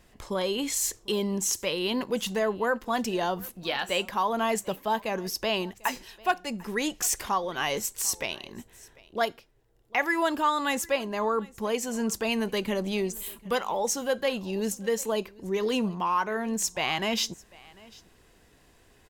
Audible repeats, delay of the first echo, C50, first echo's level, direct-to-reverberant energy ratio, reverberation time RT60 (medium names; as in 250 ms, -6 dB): 1, 746 ms, no reverb, -23.5 dB, no reverb, no reverb